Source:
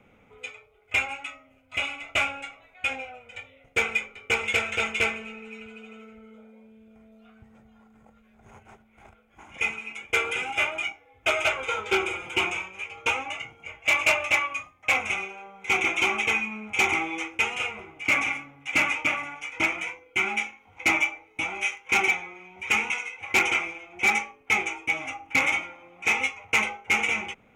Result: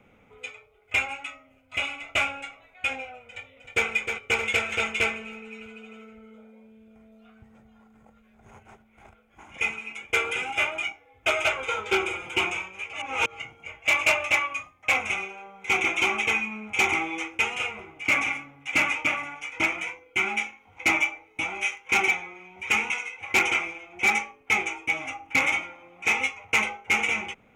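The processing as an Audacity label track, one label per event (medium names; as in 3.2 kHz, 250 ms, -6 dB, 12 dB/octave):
3.250000	3.870000	echo throw 310 ms, feedback 55%, level -6.5 dB
12.930000	13.390000	reverse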